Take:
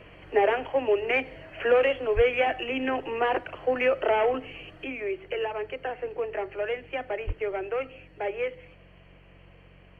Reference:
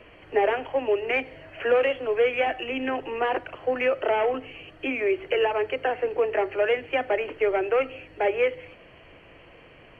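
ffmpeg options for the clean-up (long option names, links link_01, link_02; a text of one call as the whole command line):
ffmpeg -i in.wav -filter_complex "[0:a]bandreject=frequency=46:width_type=h:width=4,bandreject=frequency=92:width_type=h:width=4,bandreject=frequency=138:width_type=h:width=4,bandreject=frequency=184:width_type=h:width=4,asplit=3[link_01][link_02][link_03];[link_01]afade=type=out:start_time=2.15:duration=0.02[link_04];[link_02]highpass=frequency=140:width=0.5412,highpass=frequency=140:width=1.3066,afade=type=in:start_time=2.15:duration=0.02,afade=type=out:start_time=2.27:duration=0.02[link_05];[link_03]afade=type=in:start_time=2.27:duration=0.02[link_06];[link_04][link_05][link_06]amix=inputs=3:normalize=0,asplit=3[link_07][link_08][link_09];[link_07]afade=type=out:start_time=7.26:duration=0.02[link_10];[link_08]highpass=frequency=140:width=0.5412,highpass=frequency=140:width=1.3066,afade=type=in:start_time=7.26:duration=0.02,afade=type=out:start_time=7.38:duration=0.02[link_11];[link_09]afade=type=in:start_time=7.38:duration=0.02[link_12];[link_10][link_11][link_12]amix=inputs=3:normalize=0,asetnsamples=nb_out_samples=441:pad=0,asendcmd='4.84 volume volume 7dB',volume=0dB" out.wav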